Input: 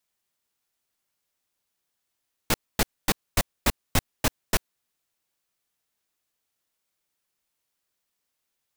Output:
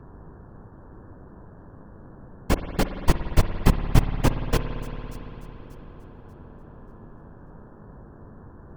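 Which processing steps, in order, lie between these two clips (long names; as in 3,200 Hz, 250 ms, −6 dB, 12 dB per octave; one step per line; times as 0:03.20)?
harmonic-percussive split with one part muted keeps percussive
hum with harmonics 100 Hz, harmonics 17, −52 dBFS −4 dB per octave
hollow resonant body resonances 360/1,000/3,200 Hz, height 6 dB
random phases in short frames
spectral tilt −2.5 dB per octave
notch filter 3,800 Hz, Q 23
on a send: delay with a high-pass on its return 586 ms, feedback 32%, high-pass 5,300 Hz, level −15 dB
on the sum: spring reverb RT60 3.9 s, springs 56 ms, chirp 35 ms, DRR 7.5 dB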